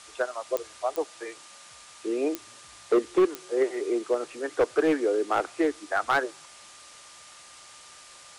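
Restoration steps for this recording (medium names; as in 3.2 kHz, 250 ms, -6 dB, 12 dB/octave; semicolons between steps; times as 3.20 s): clip repair -16 dBFS; de-click; band-stop 1.2 kHz, Q 30; noise print and reduce 22 dB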